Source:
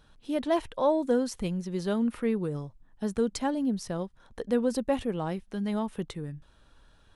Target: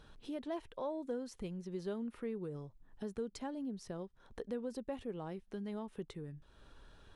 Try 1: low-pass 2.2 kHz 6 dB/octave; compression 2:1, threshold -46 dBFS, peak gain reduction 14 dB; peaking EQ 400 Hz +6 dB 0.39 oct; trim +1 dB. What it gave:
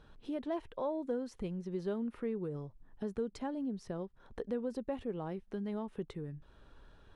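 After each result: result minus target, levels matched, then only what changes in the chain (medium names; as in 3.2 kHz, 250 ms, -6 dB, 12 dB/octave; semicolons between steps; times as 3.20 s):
8 kHz band -7.5 dB; compression: peak gain reduction -4 dB
change: low-pass 7.2 kHz 6 dB/octave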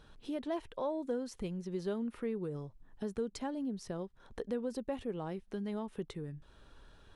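compression: peak gain reduction -4 dB
change: compression 2:1, threshold -53.5 dBFS, peak gain reduction 18 dB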